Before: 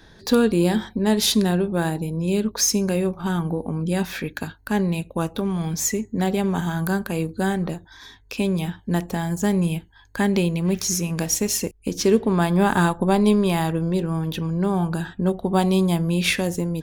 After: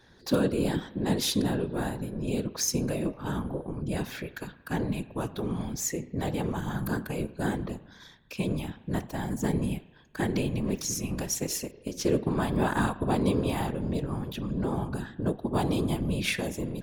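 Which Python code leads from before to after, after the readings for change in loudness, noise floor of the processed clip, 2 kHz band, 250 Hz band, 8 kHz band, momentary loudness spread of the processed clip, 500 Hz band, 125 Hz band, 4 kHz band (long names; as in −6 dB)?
−8.0 dB, −54 dBFS, −8.0 dB, −8.5 dB, −8.0 dB, 8 LU, −8.0 dB, −7.5 dB, −8.0 dB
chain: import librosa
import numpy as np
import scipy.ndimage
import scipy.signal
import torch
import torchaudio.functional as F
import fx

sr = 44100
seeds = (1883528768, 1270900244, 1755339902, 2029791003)

y = fx.rev_spring(x, sr, rt60_s=1.2, pass_ms=(36,), chirp_ms=45, drr_db=15.0)
y = fx.whisperise(y, sr, seeds[0])
y = y * librosa.db_to_amplitude(-8.0)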